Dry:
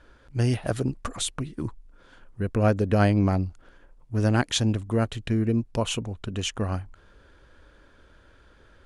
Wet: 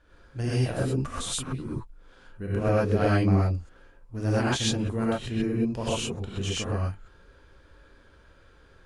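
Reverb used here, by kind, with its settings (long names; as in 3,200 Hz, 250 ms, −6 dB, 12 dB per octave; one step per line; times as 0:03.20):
reverb whose tail is shaped and stops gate 150 ms rising, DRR −7.5 dB
level −8.5 dB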